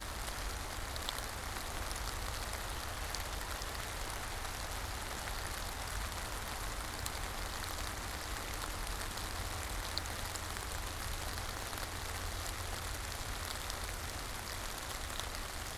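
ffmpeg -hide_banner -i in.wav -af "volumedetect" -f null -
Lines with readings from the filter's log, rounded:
mean_volume: -40.6 dB
max_volume: -17.3 dB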